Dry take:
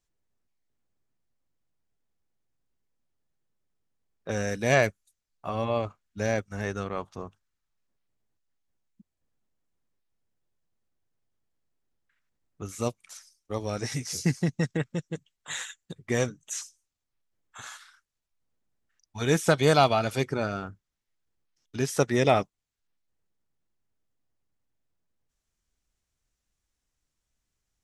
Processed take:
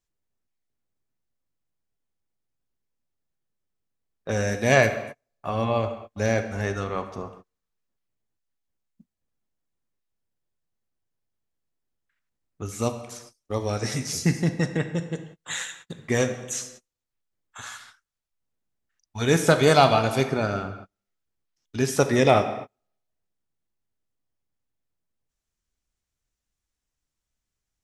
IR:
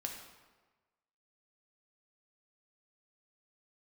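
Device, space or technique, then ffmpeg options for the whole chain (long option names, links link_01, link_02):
keyed gated reverb: -filter_complex "[0:a]asplit=3[link_01][link_02][link_03];[1:a]atrim=start_sample=2205[link_04];[link_02][link_04]afir=irnorm=-1:irlink=0[link_05];[link_03]apad=whole_len=1227507[link_06];[link_05][link_06]sidechaingate=range=-39dB:threshold=-54dB:ratio=16:detection=peak,volume=3.5dB[link_07];[link_01][link_07]amix=inputs=2:normalize=0,volume=-3dB"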